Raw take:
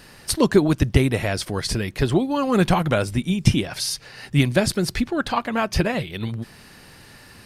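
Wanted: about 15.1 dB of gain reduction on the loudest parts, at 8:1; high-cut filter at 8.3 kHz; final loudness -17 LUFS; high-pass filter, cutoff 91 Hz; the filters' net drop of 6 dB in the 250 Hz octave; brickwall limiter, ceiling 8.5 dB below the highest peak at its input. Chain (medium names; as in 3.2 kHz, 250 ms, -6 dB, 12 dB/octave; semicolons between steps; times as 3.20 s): high-pass 91 Hz; low-pass 8.3 kHz; peaking EQ 250 Hz -8.5 dB; compression 8:1, threshold -30 dBFS; trim +20 dB; peak limiter -6 dBFS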